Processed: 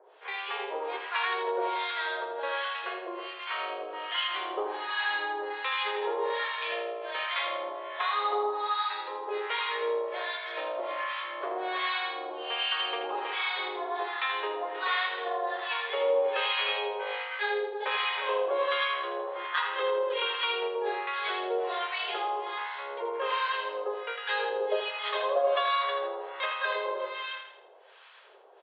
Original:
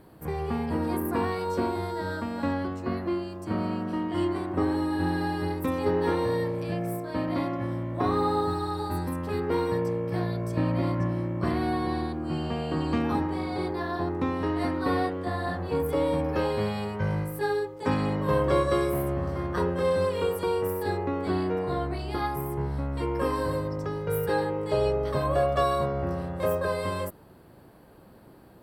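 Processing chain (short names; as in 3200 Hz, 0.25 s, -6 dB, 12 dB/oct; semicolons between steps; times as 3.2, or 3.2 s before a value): tilt +3.5 dB/oct; compressor, threshold -26 dBFS, peak gain reduction 5.5 dB; Chebyshev band-pass 400–3500 Hz, order 5; high shelf 2600 Hz +10.5 dB; notch 1200 Hz, Q 27; echo 0.318 s -7.5 dB; harmonic tremolo 1.3 Hz, depth 100%, crossover 920 Hz; feedback echo 81 ms, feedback 44%, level -7 dB; gain +5.5 dB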